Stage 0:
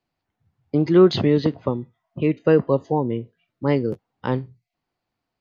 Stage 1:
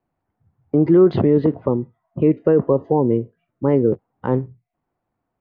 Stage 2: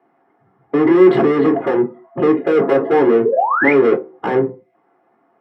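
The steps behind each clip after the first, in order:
limiter -13 dBFS, peak gain reduction 8.5 dB; LPF 1300 Hz 12 dB/oct; dynamic EQ 400 Hz, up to +4 dB, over -33 dBFS, Q 1.4; gain +5 dB
overdrive pedal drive 33 dB, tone 2100 Hz, clips at -4.5 dBFS; painted sound rise, 3.25–3.73, 410–2500 Hz -12 dBFS; reverb RT60 0.30 s, pre-delay 3 ms, DRR 1.5 dB; gain -15.5 dB

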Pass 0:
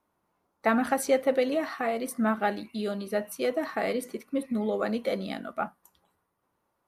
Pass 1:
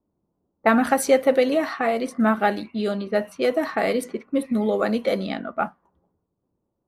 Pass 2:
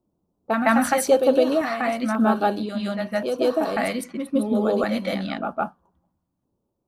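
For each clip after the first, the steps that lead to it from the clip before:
low-pass opened by the level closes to 360 Hz, open at -25.5 dBFS; gain +6.5 dB
reverse echo 0.16 s -4.5 dB; LFO notch square 0.93 Hz 430–2000 Hz

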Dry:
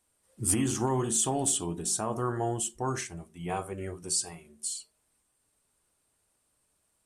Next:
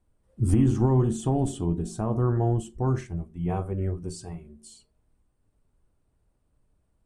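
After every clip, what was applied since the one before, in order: tilt -4.5 dB/oct; gain -2 dB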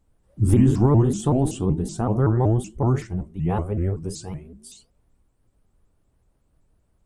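shaped vibrato saw up 5.3 Hz, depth 250 cents; gain +4.5 dB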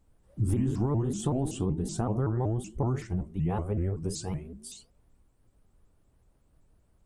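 compressor 4:1, threshold -26 dBFS, peak gain reduction 12 dB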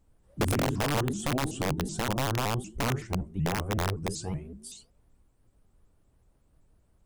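wrapped overs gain 21 dB

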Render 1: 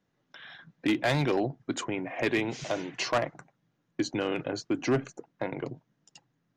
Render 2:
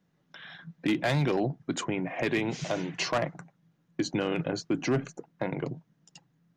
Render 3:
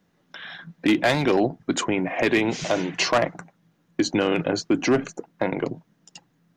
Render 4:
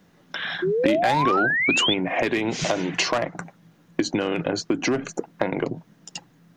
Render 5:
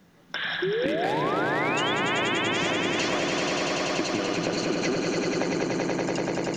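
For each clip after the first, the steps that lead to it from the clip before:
bell 170 Hz +11 dB 0.39 oct; limiter -19.5 dBFS, peak gain reduction 5 dB; gain +1 dB
bell 140 Hz -11.5 dB 0.44 oct; gain +8 dB
compressor 10:1, threshold -29 dBFS, peak gain reduction 13.5 dB; painted sound rise, 0.62–1.94, 350–3600 Hz -31 dBFS; gain +9 dB
on a send: swelling echo 96 ms, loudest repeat 5, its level -5 dB; on the sum: compressor 4:1, threshold -24 dBFS, peak gain reduction 10.5 dB

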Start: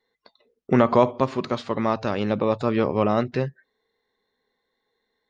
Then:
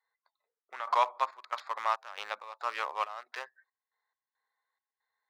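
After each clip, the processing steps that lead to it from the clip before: Wiener smoothing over 15 samples; HPF 920 Hz 24 dB/oct; step gate "x.x.xx.x" 69 bpm -12 dB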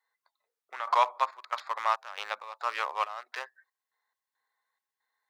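HPF 350 Hz 6 dB/oct; gain +3 dB

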